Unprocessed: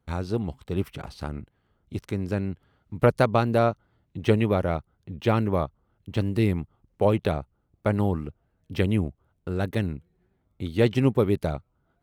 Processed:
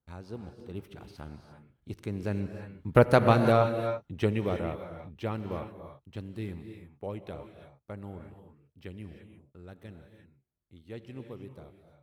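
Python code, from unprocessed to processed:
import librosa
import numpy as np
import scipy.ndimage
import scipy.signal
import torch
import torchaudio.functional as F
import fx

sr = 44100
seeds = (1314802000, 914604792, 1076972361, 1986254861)

y = fx.doppler_pass(x, sr, speed_mps=9, closest_m=5.3, pass_at_s=3.15)
y = fx.rev_gated(y, sr, seeds[0], gate_ms=370, shape='rising', drr_db=6.5)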